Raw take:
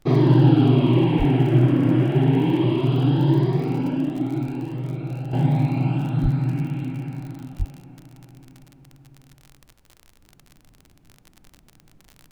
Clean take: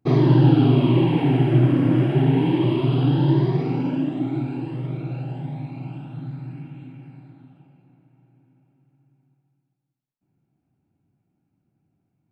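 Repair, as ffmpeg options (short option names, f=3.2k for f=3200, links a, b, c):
-filter_complex "[0:a]adeclick=t=4,asplit=3[a][b][c];[a]afade=t=out:st=1.18:d=0.02[d];[b]highpass=f=140:w=0.5412,highpass=f=140:w=1.3066,afade=t=in:st=1.18:d=0.02,afade=t=out:st=1.3:d=0.02[e];[c]afade=t=in:st=1.3:d=0.02[f];[d][e][f]amix=inputs=3:normalize=0,asplit=3[g][h][i];[g]afade=t=out:st=6.22:d=0.02[j];[h]highpass=f=140:w=0.5412,highpass=f=140:w=1.3066,afade=t=in:st=6.22:d=0.02,afade=t=out:st=6.34:d=0.02[k];[i]afade=t=in:st=6.34:d=0.02[l];[j][k][l]amix=inputs=3:normalize=0,asplit=3[m][n][o];[m]afade=t=out:st=7.58:d=0.02[p];[n]highpass=f=140:w=0.5412,highpass=f=140:w=1.3066,afade=t=in:st=7.58:d=0.02,afade=t=out:st=7.7:d=0.02[q];[o]afade=t=in:st=7.7:d=0.02[r];[p][q][r]amix=inputs=3:normalize=0,agate=range=-21dB:threshold=-47dB,asetnsamples=n=441:p=0,asendcmd='5.33 volume volume -11.5dB',volume=0dB"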